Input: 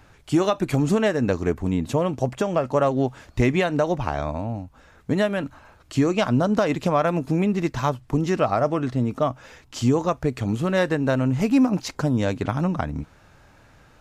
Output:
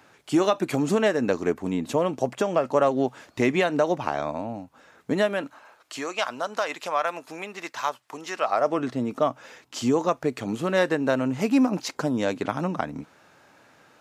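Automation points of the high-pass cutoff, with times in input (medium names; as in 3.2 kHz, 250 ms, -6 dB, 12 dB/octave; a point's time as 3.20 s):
5.15 s 230 Hz
6.12 s 820 Hz
8.40 s 820 Hz
8.80 s 240 Hz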